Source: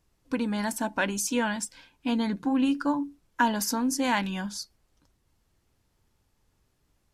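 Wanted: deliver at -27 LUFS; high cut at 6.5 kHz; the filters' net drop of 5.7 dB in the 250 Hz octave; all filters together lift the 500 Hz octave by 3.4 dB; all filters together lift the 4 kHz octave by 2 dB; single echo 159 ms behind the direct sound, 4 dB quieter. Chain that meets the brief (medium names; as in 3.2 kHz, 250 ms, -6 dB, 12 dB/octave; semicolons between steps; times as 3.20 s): low-pass 6.5 kHz; peaking EQ 250 Hz -7.5 dB; peaking EQ 500 Hz +5.5 dB; peaking EQ 4 kHz +3.5 dB; delay 159 ms -4 dB; trim +1 dB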